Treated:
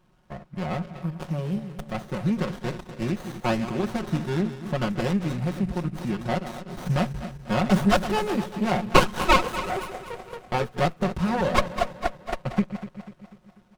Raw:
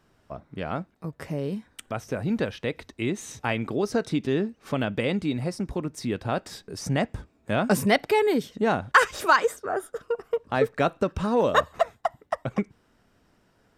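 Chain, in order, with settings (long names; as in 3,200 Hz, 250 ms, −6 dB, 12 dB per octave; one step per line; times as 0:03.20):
feedback delay that plays each chunk backwards 123 ms, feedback 69%, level −11 dB
parametric band 430 Hz −8.5 dB 1.2 octaves
comb filter 5.5 ms, depth 99%
windowed peak hold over 17 samples
level +1 dB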